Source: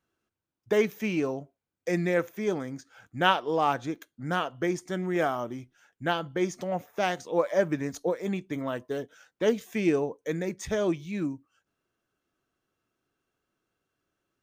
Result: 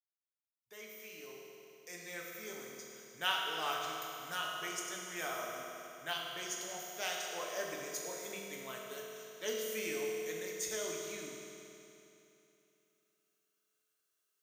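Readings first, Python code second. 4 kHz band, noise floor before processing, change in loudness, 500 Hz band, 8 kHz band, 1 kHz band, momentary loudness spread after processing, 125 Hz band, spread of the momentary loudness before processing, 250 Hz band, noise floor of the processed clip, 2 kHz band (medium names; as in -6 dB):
-1.0 dB, under -85 dBFS, -10.5 dB, -14.0 dB, +4.5 dB, -11.0 dB, 14 LU, -23.0 dB, 10 LU, -21.0 dB, -83 dBFS, -7.5 dB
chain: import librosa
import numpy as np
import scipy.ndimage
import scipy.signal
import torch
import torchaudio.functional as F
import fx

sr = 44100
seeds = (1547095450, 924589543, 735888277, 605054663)

y = fx.fade_in_head(x, sr, length_s=3.66)
y = F.preemphasis(torch.from_numpy(y), 0.97).numpy()
y = fx.rev_fdn(y, sr, rt60_s=3.0, lf_ratio=1.0, hf_ratio=0.95, size_ms=14.0, drr_db=-2.5)
y = y * librosa.db_to_amplitude(2.0)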